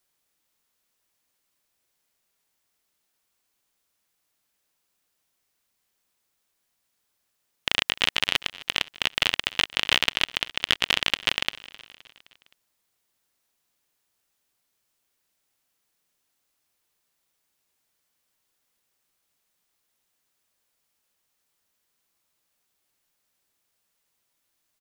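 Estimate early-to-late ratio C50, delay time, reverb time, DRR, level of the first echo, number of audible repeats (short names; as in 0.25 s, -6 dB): none, 0.26 s, none, none, -20.0 dB, 3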